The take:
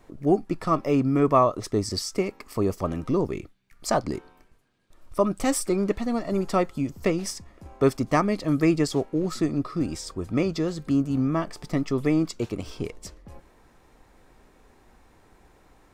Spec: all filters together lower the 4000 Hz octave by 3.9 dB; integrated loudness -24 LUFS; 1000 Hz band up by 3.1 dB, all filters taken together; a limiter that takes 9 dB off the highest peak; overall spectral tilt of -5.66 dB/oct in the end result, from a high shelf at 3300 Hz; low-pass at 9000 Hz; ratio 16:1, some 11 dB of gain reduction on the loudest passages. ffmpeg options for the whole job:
-af "lowpass=9k,equalizer=f=1k:t=o:g=4,highshelf=f=3.3k:g=3,equalizer=f=4k:t=o:g=-8,acompressor=threshold=-24dB:ratio=16,volume=8.5dB,alimiter=limit=-12.5dB:level=0:latency=1"

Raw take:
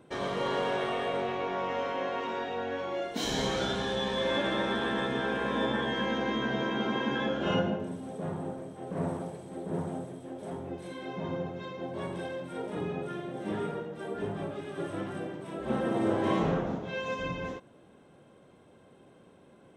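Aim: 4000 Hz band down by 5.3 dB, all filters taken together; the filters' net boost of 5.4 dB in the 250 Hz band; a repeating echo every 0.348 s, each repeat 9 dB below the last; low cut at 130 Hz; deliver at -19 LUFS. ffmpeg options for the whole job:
-af "highpass=130,equalizer=f=250:t=o:g=7.5,equalizer=f=4k:t=o:g=-7,aecho=1:1:348|696|1044|1392:0.355|0.124|0.0435|0.0152,volume=10.5dB"

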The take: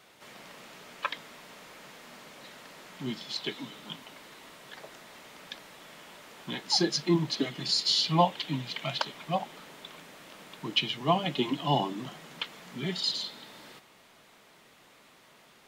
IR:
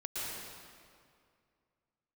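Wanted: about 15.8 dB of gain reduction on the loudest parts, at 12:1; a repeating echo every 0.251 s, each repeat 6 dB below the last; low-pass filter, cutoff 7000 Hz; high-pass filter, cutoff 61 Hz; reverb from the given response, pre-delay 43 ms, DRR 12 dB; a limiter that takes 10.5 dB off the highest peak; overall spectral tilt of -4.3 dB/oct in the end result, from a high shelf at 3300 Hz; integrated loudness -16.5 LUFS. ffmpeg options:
-filter_complex "[0:a]highpass=61,lowpass=7k,highshelf=f=3.3k:g=-3,acompressor=threshold=-35dB:ratio=12,alimiter=level_in=7dB:limit=-24dB:level=0:latency=1,volume=-7dB,aecho=1:1:251|502|753|1004|1255|1506:0.501|0.251|0.125|0.0626|0.0313|0.0157,asplit=2[a][b];[1:a]atrim=start_sample=2205,adelay=43[c];[b][c]afir=irnorm=-1:irlink=0,volume=-15.5dB[d];[a][d]amix=inputs=2:normalize=0,volume=26dB"

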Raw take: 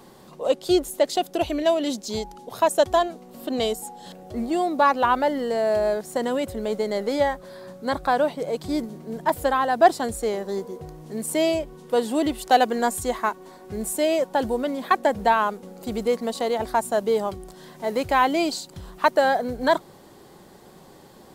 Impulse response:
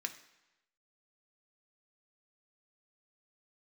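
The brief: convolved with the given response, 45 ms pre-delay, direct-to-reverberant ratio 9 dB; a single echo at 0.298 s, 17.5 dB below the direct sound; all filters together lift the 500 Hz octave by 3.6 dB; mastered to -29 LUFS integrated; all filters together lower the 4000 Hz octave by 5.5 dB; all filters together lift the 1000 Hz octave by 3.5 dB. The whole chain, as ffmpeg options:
-filter_complex "[0:a]equalizer=f=500:t=o:g=3.5,equalizer=f=1k:t=o:g=3.5,equalizer=f=4k:t=o:g=-7.5,aecho=1:1:298:0.133,asplit=2[a][b];[1:a]atrim=start_sample=2205,adelay=45[c];[b][c]afir=irnorm=-1:irlink=0,volume=-9dB[d];[a][d]amix=inputs=2:normalize=0,volume=-8.5dB"

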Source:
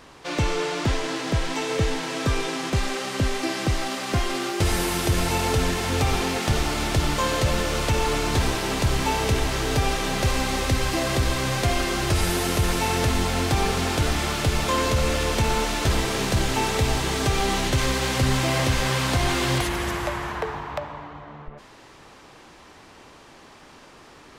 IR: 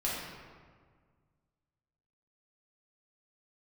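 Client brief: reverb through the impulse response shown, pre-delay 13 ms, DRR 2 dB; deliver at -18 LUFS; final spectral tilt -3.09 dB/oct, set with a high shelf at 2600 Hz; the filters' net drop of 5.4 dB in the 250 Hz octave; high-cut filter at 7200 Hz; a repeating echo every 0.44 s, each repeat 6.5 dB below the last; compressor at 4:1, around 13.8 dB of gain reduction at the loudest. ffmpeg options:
-filter_complex "[0:a]lowpass=7.2k,equalizer=f=250:t=o:g=-8,highshelf=f=2.6k:g=6.5,acompressor=threshold=-35dB:ratio=4,aecho=1:1:440|880|1320|1760|2200|2640:0.473|0.222|0.105|0.0491|0.0231|0.0109,asplit=2[a][b];[1:a]atrim=start_sample=2205,adelay=13[c];[b][c]afir=irnorm=-1:irlink=0,volume=-8.5dB[d];[a][d]amix=inputs=2:normalize=0,volume=14.5dB"

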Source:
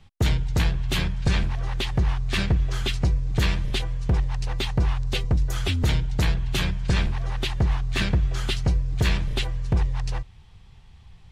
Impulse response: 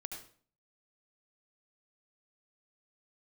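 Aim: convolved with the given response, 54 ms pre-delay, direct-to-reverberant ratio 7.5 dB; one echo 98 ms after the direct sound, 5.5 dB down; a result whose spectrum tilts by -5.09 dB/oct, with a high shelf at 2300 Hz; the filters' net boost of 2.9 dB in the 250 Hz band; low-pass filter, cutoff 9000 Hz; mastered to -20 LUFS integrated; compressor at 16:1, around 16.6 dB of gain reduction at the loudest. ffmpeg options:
-filter_complex "[0:a]lowpass=9k,equalizer=f=250:t=o:g=4.5,highshelf=f=2.3k:g=4.5,acompressor=threshold=-33dB:ratio=16,aecho=1:1:98:0.531,asplit=2[a][b];[1:a]atrim=start_sample=2205,adelay=54[c];[b][c]afir=irnorm=-1:irlink=0,volume=-5.5dB[d];[a][d]amix=inputs=2:normalize=0,volume=16.5dB"

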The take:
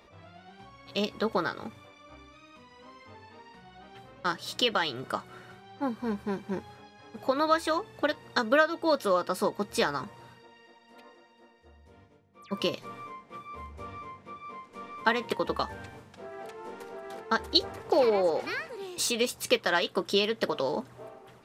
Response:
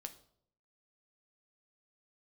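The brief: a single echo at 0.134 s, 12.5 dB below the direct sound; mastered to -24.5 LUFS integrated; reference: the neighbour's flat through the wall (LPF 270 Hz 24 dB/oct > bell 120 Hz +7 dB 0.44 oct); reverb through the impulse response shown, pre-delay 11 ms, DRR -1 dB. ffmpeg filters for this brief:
-filter_complex "[0:a]aecho=1:1:134:0.237,asplit=2[a][b];[1:a]atrim=start_sample=2205,adelay=11[c];[b][c]afir=irnorm=-1:irlink=0,volume=5dB[d];[a][d]amix=inputs=2:normalize=0,lowpass=f=270:w=0.5412,lowpass=f=270:w=1.3066,equalizer=f=120:t=o:w=0.44:g=7,volume=13dB"

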